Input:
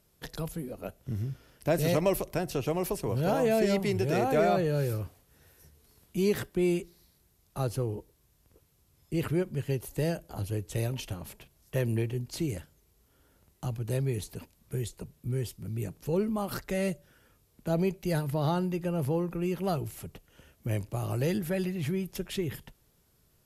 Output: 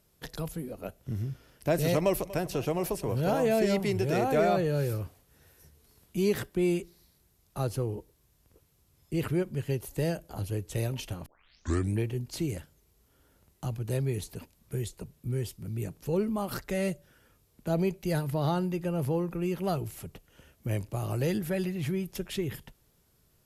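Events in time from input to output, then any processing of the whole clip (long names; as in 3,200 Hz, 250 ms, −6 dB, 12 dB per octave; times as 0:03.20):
0:01.97–0:02.41: delay throw 240 ms, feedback 75%, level −17.5 dB
0:11.26: tape start 0.73 s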